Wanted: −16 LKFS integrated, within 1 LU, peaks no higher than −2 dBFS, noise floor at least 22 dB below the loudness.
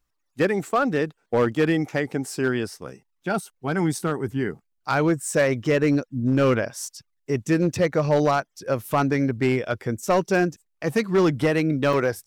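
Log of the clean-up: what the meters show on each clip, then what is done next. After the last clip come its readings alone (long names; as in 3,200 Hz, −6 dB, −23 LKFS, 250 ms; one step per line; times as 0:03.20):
share of clipped samples 0.9%; peaks flattened at −13.5 dBFS; number of dropouts 2; longest dropout 3.4 ms; integrated loudness −23.5 LKFS; sample peak −13.5 dBFS; target loudness −16.0 LKFS
→ clipped peaks rebuilt −13.5 dBFS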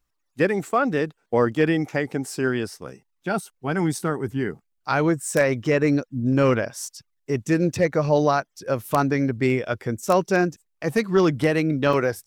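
share of clipped samples 0.0%; number of dropouts 2; longest dropout 3.4 ms
→ repair the gap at 0:03.99/0:11.93, 3.4 ms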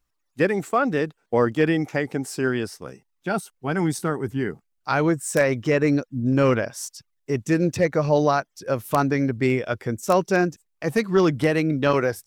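number of dropouts 0; integrated loudness −23.0 LKFS; sample peak −4.5 dBFS; target loudness −16.0 LKFS
→ level +7 dB
brickwall limiter −2 dBFS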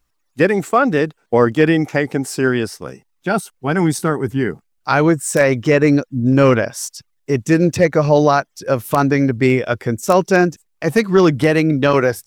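integrated loudness −16.0 LKFS; sample peak −2.0 dBFS; background noise floor −67 dBFS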